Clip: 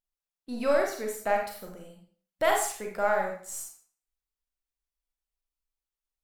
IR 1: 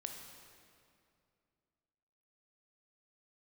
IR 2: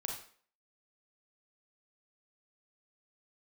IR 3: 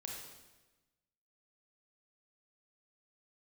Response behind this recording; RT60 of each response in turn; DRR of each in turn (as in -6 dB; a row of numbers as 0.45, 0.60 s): 2; 2.4, 0.50, 1.1 s; 3.0, 0.5, -1.5 dB